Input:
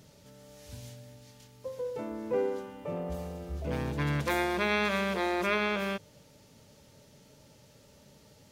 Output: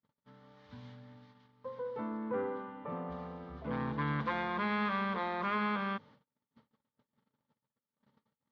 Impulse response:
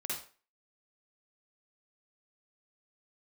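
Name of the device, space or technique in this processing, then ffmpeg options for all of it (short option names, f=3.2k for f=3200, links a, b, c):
overdrive pedal into a guitar cabinet: -filter_complex "[0:a]asplit=2[a][b];[b]highpass=f=720:p=1,volume=16dB,asoftclip=type=tanh:threshold=-16dB[c];[a][c]amix=inputs=2:normalize=0,lowpass=f=1.8k:p=1,volume=-6dB,highpass=79,equalizer=f=130:t=q:w=4:g=5,equalizer=f=230:t=q:w=4:g=10,equalizer=f=360:t=q:w=4:g=-8,equalizer=f=620:t=q:w=4:g=-10,equalizer=f=1.1k:t=q:w=4:g=7,equalizer=f=2.6k:t=q:w=4:g=-10,lowpass=f=3.7k:w=0.5412,lowpass=f=3.7k:w=1.3066,asettb=1/sr,asplit=3[d][e][f];[d]atrim=end=2.174[g];[e]atrim=start=2.17:end=2.9,asetpts=PTS-STARTPTS,afade=t=in:d=0.004:c=qsin,afade=t=out:st=0.726:d=0.004:c=qsin,lowpass=3.3k[h];[f]atrim=start=2.896[i];[g][h]acrossfade=d=0.004:c1=hsin:c2=qsin[j];[j][i]acrossfade=d=0.004:c1=qsin:c2=hsin,agate=range=-39dB:threshold=-50dB:ratio=16:detection=peak,volume=-6.5dB"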